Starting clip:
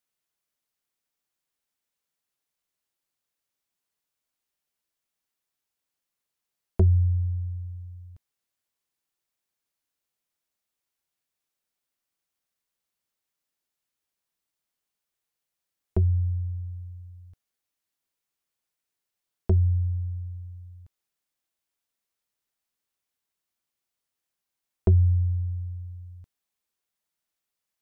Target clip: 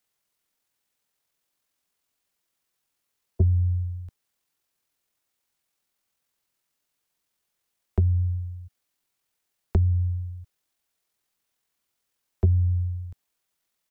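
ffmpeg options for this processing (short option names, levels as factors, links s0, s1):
-filter_complex "[0:a]atempo=2,acrossover=split=190|440[s0][s1][s2];[s0]acompressor=threshold=0.0447:ratio=4[s3];[s1]acompressor=threshold=0.00562:ratio=4[s4];[s2]acompressor=threshold=0.00355:ratio=4[s5];[s3][s4][s5]amix=inputs=3:normalize=0,aeval=exprs='0.15*(cos(1*acos(clip(val(0)/0.15,-1,1)))-cos(1*PI/2))+0.00188*(cos(7*acos(clip(val(0)/0.15,-1,1)))-cos(7*PI/2))':c=same,volume=2.51"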